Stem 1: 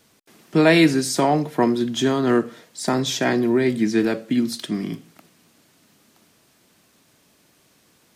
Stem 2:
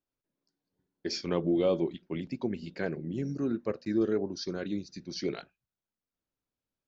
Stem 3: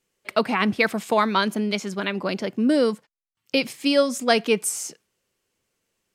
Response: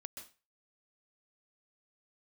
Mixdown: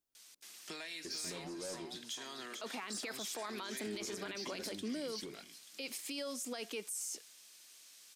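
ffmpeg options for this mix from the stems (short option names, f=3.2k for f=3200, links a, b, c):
-filter_complex "[0:a]bandpass=f=4.7k:t=q:w=0.55:csg=0,acompressor=threshold=-35dB:ratio=5,adelay=150,volume=-3dB,asplit=2[a][b];[b]volume=-15.5dB[c];[1:a]volume=-4dB,asplit=3[d][e][f];[d]atrim=end=2.06,asetpts=PTS-STARTPTS,afade=t=out:st=2.056:d=0.004:c=hsin[g];[e]atrim=start=2.06:end=3.77,asetpts=PTS-STARTPTS,volume=0[h];[f]atrim=start=3.77,asetpts=PTS-STARTPTS,afade=t=in:d=0.004:c=hsin[i];[g][h][i]concat=n=3:v=0:a=1[j];[2:a]highpass=f=250:w=0.5412,highpass=f=250:w=1.3066,acompressor=threshold=-26dB:ratio=2.5,adelay=2250,volume=-10dB[k];[a][j]amix=inputs=2:normalize=0,asoftclip=type=tanh:threshold=-29.5dB,acompressor=threshold=-48dB:ratio=3,volume=0dB[l];[c]aecho=0:1:442|884|1326|1768:1|0.31|0.0961|0.0298[m];[k][l][m]amix=inputs=3:normalize=0,highshelf=f=3.8k:g=11,alimiter=level_in=8.5dB:limit=-24dB:level=0:latency=1:release=18,volume=-8.5dB"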